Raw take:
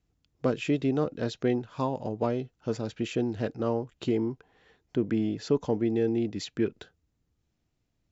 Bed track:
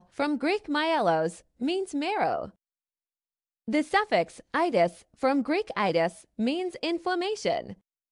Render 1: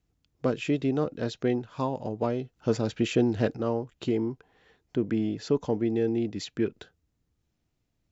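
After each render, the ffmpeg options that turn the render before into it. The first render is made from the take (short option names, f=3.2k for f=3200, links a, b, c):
-filter_complex "[0:a]asplit=3[a][b][c];[a]atrim=end=2.562[d];[b]atrim=start=2.558:end=3.572,asetpts=PTS-STARTPTS,volume=5dB[e];[c]atrim=start=3.568[f];[d][e]acrossfade=d=0.004:c1=hsin:c2=hsin[g];[g][f]acrossfade=d=0.004:c1=hsin:c2=hsin"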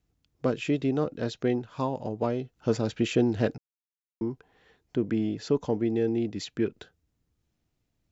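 -filter_complex "[0:a]asplit=3[a][b][c];[a]atrim=end=3.58,asetpts=PTS-STARTPTS,afade=t=out:st=3.576:d=0.004:c=hsin[d];[b]atrim=start=3.58:end=4.21,asetpts=PTS-STARTPTS,volume=0[e];[c]atrim=start=4.21,asetpts=PTS-STARTPTS,afade=t=in:d=0.004:c=hsin[f];[d][e][f]concat=n=3:v=0:a=1"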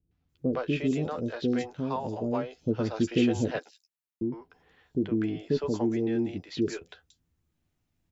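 -filter_complex "[0:a]asplit=2[a][b];[b]adelay=12,volume=-8.5dB[c];[a][c]amix=inputs=2:normalize=0,acrossover=split=500|5000[d][e][f];[e]adelay=110[g];[f]adelay=290[h];[d][g][h]amix=inputs=3:normalize=0"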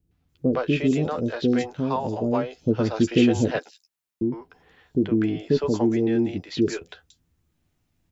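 -af "volume=6dB"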